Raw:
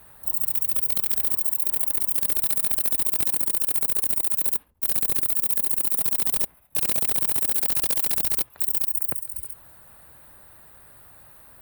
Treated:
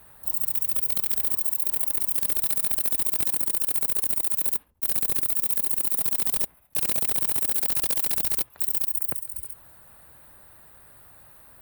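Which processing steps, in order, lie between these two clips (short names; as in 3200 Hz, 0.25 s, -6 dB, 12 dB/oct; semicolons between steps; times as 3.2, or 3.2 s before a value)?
block floating point 7-bit; gain -1.5 dB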